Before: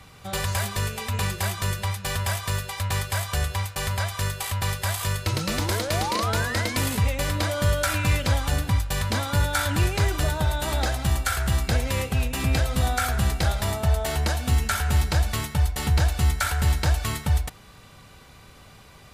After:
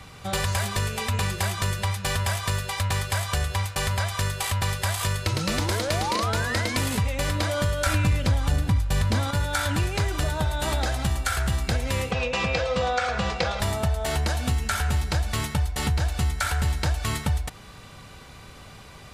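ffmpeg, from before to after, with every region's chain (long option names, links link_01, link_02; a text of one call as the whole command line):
ffmpeg -i in.wav -filter_complex "[0:a]asettb=1/sr,asplit=3[link_01][link_02][link_03];[link_01]atrim=end=7.864[link_04];[link_02]atrim=start=7.86:end=9.31,asetpts=PTS-STARTPTS,afade=type=in:duration=0.004:curve=qsin,afade=type=out:start_time=1.446:duration=0.004:curve=qsin,lowshelf=frequency=350:gain=7,acontrast=33[link_05];[link_03]atrim=start=9.306[link_06];[link_04][link_05]acrossfade=duration=0.004:curve1=hsin:curve2=qsin[link_07];[link_07][link_06]acrossfade=duration=0.004:curve1=qsin:curve2=hsin,asettb=1/sr,asplit=3[link_08][link_09][link_10];[link_08]atrim=end=12.114[link_11];[link_09]atrim=start=12.11:end=13.6,asetpts=PTS-STARTPTS,afade=type=in:duration=0.004:curve=qsin,afade=type=out:start_time=1.486:duration=0.004:curve=qsin,highpass=110,equalizer=frequency=250:width_type=q:width=4:gain=-7,equalizer=frequency=510:width_type=q:width=4:gain=9,equalizer=frequency=1100:width_type=q:width=4:gain=5,equalizer=frequency=2500:width_type=q:width=4:gain=5,lowpass=frequency=6100:width=0.5412,lowpass=frequency=6100:width=1.3066,bandreject=frequency=270:width=8.1,aecho=1:1:4.1:0.48,atrim=end_sample=65709[link_12];[link_10]atrim=start=13.596[link_13];[link_11][link_12]acrossfade=duration=0.004:curve1=hsin:curve2=qsin[link_14];[link_14][link_13]acrossfade=duration=0.004:curve1=qsin:curve2=hsin,equalizer=frequency=14000:width=1.3:gain=-6.5,acompressor=threshold=-26dB:ratio=4,volume=4dB" out.wav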